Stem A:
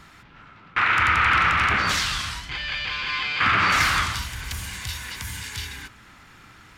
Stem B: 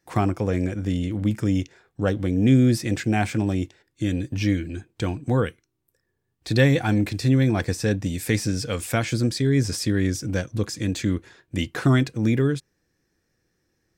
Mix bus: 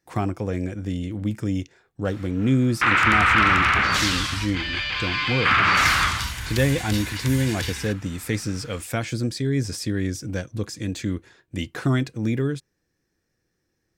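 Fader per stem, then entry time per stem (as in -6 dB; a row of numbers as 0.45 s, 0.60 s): +1.5 dB, -3.0 dB; 2.05 s, 0.00 s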